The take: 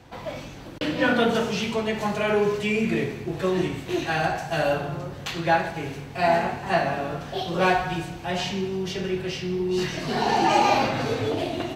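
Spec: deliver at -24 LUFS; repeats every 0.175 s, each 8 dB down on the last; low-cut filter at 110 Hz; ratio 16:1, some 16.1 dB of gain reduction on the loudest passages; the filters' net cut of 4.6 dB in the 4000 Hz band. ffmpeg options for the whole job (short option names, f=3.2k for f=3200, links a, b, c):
-af "highpass=110,equalizer=f=4k:t=o:g=-6.5,acompressor=threshold=-32dB:ratio=16,aecho=1:1:175|350|525|700|875:0.398|0.159|0.0637|0.0255|0.0102,volume=11.5dB"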